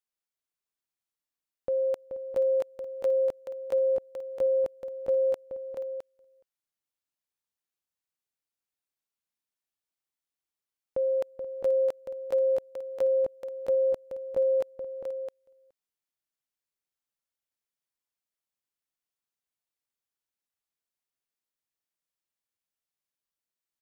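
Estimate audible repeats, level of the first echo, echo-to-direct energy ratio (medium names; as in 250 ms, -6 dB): 3, -7.5 dB, -4.5 dB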